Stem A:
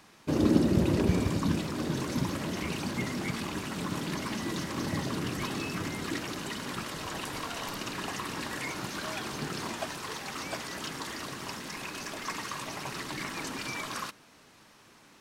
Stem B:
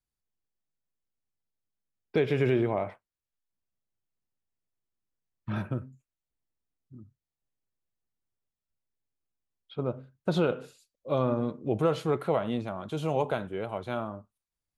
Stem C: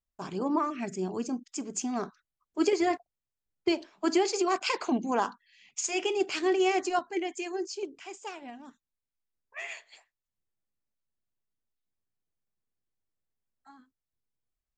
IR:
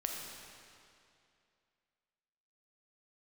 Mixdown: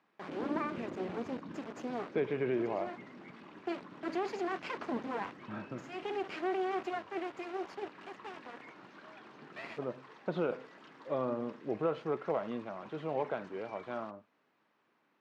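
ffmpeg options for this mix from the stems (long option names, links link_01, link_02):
-filter_complex "[0:a]volume=-15dB[link_01];[1:a]volume=-6dB,asplit=2[link_02][link_03];[2:a]alimiter=limit=-21.5dB:level=0:latency=1:release=37,acrusher=bits=4:dc=4:mix=0:aa=0.000001,volume=-0.5dB[link_04];[link_03]apad=whole_len=651780[link_05];[link_04][link_05]sidechaincompress=threshold=-38dB:ratio=8:attack=16:release=754[link_06];[link_01][link_02][link_06]amix=inputs=3:normalize=0,highpass=220,lowpass=2300"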